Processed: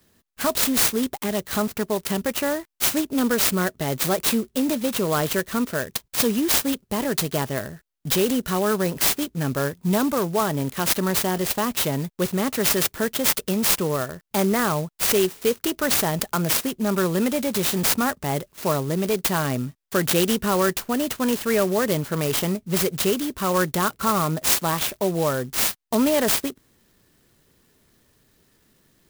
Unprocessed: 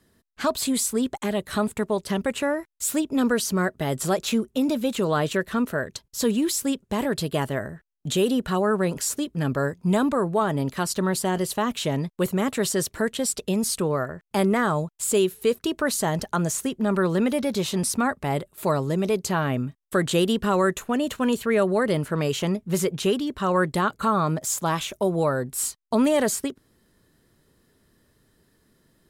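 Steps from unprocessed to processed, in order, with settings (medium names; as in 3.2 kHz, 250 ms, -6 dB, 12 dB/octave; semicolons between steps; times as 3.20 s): peaking EQ 5.4 kHz +12.5 dB 1.3 oct; sampling jitter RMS 0.058 ms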